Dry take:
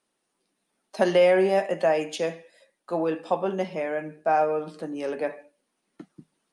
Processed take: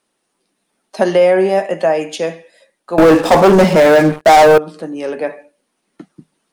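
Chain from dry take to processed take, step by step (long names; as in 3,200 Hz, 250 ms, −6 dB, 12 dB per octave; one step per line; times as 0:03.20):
0:02.98–0:04.58: leveller curve on the samples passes 5
dynamic equaliser 2,900 Hz, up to −5 dB, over −34 dBFS, Q 1.1
level +8 dB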